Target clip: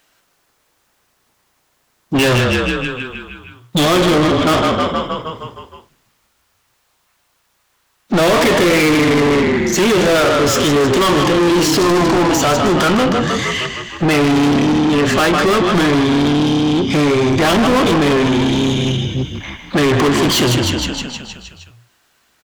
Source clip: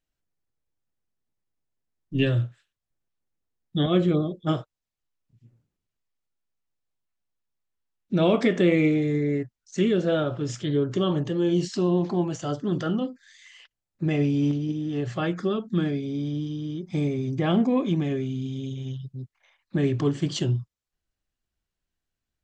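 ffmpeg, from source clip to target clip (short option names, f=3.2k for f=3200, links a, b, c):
-filter_complex "[0:a]equalizer=f=1.1k:w=1.5:g=4,asplit=9[a][b][c][d][e][f][g][h][i];[b]adelay=156,afreqshift=-30,volume=-9dB[j];[c]adelay=312,afreqshift=-60,volume=-13.3dB[k];[d]adelay=468,afreqshift=-90,volume=-17.6dB[l];[e]adelay=624,afreqshift=-120,volume=-21.9dB[m];[f]adelay=780,afreqshift=-150,volume=-26.2dB[n];[g]adelay=936,afreqshift=-180,volume=-30.5dB[o];[h]adelay=1092,afreqshift=-210,volume=-34.8dB[p];[i]adelay=1248,afreqshift=-240,volume=-39.1dB[q];[a][j][k][l][m][n][o][p][q]amix=inputs=9:normalize=0,asplit=2[r][s];[s]highpass=f=720:p=1,volume=37dB,asoftclip=type=tanh:threshold=-7dB[t];[r][t]amix=inputs=2:normalize=0,lowpass=f=3.2k:p=1,volume=-6dB,acrossover=split=340|1900[u][v][w];[w]crystalizer=i=1:c=0[x];[u][v][x]amix=inputs=3:normalize=0,volume=1dB"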